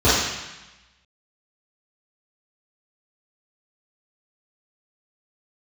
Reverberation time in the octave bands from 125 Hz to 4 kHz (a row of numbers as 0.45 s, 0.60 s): 1.2 s, 1.1 s, 0.90 s, 1.1 s, 1.2 s, 1.1 s